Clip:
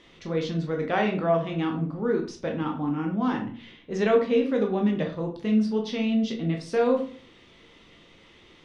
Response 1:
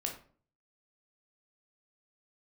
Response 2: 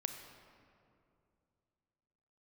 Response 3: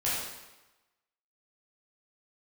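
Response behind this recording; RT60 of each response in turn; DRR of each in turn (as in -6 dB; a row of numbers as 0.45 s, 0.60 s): 1; 0.45 s, 2.5 s, 1.1 s; 1.0 dB, 6.0 dB, -9.5 dB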